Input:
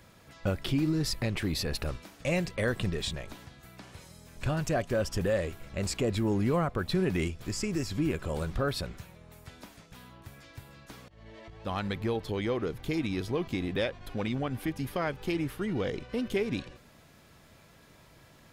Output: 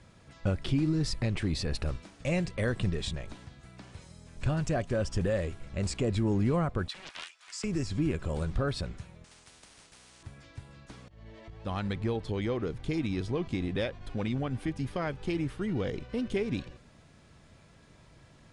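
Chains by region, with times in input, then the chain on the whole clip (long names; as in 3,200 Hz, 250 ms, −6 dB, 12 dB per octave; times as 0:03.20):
0:06.88–0:07.64: high-pass filter 1,000 Hz 24 dB per octave + highs frequency-modulated by the lows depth 0.64 ms
0:09.24–0:10.23: bad sample-rate conversion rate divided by 6×, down filtered, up hold + high-frequency loss of the air 64 metres + every bin compressed towards the loudest bin 10 to 1
whole clip: Butterworth low-pass 10,000 Hz 72 dB per octave; low-shelf EQ 230 Hz +6.5 dB; level −3 dB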